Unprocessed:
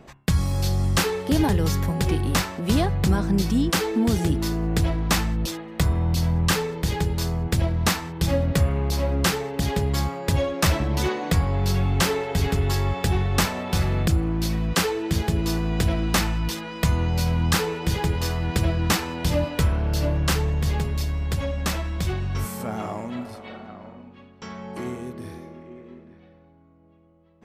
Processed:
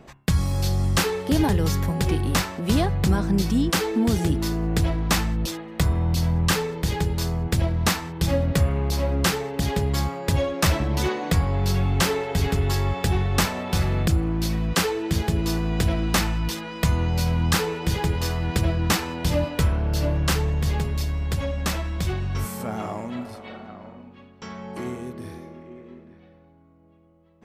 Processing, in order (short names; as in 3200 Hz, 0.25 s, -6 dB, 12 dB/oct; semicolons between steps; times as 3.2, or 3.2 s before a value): 18.61–20.09 mismatched tape noise reduction decoder only